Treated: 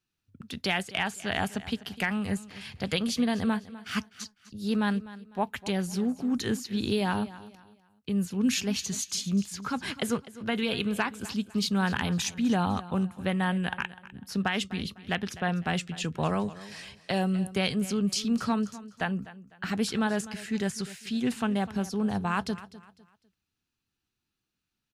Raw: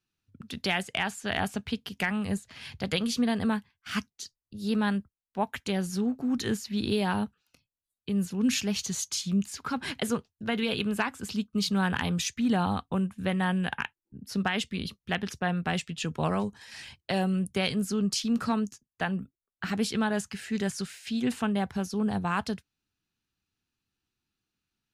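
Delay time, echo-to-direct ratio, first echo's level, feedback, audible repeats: 0.251 s, -16.5 dB, -17.0 dB, 32%, 2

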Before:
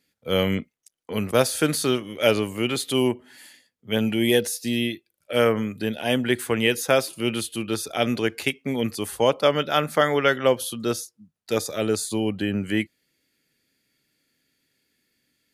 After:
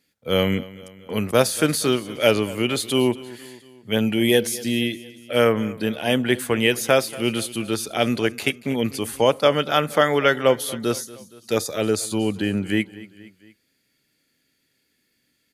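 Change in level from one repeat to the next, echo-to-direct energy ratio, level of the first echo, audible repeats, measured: -5.0 dB, -17.5 dB, -19.0 dB, 3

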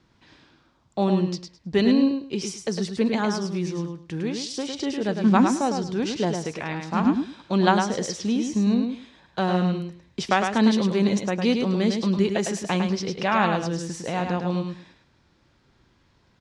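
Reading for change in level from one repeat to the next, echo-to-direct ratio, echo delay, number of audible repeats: -14.5 dB, -5.5 dB, 0.105 s, 3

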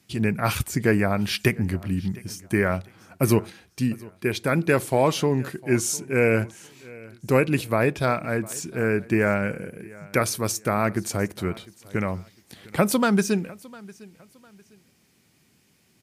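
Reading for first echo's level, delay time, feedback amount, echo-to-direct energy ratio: -22.0 dB, 0.704 s, 31%, -21.5 dB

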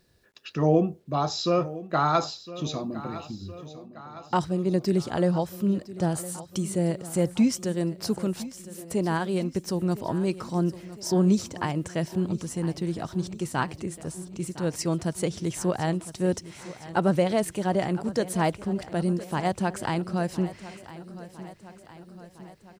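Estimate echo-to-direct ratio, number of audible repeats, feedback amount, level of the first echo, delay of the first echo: -14.0 dB, 5, 59%, -16.0 dB, 1.009 s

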